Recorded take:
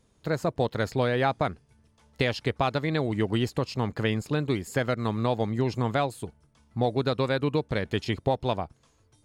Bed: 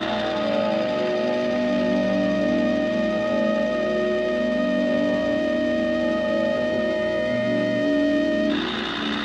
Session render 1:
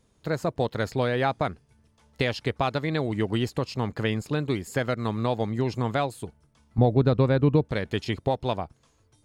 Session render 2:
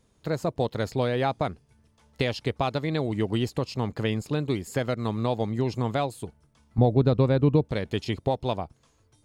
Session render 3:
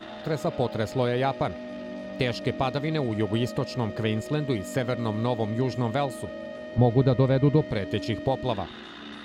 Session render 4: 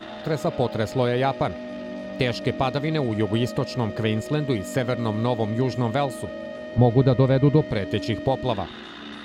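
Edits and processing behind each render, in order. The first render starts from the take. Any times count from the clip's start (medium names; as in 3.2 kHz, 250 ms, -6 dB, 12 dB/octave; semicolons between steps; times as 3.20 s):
6.78–7.65 s: tilt EQ -3 dB/octave
dynamic bell 1.6 kHz, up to -5 dB, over -45 dBFS, Q 1.5
add bed -15.5 dB
trim +3 dB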